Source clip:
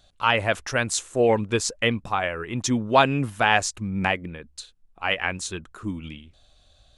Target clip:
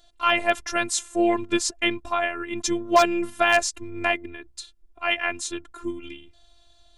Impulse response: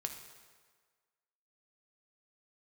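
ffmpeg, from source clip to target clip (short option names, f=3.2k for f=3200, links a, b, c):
-af "afftfilt=real='hypot(re,im)*cos(PI*b)':imag='0':win_size=512:overlap=0.75,aeval=exprs='0.335*(abs(mod(val(0)/0.335+3,4)-2)-1)':c=same,volume=4dB"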